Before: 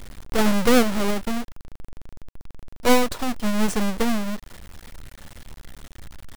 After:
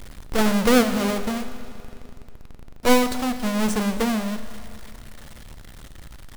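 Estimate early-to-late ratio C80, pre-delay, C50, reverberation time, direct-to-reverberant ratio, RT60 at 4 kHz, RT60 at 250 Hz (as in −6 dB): 11.5 dB, 22 ms, 11.0 dB, 2.6 s, 10.0 dB, 2.6 s, 2.6 s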